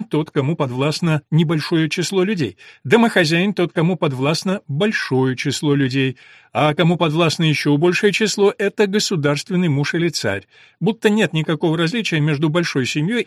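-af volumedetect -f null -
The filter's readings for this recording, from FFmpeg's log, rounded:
mean_volume: -17.8 dB
max_volume: -1.6 dB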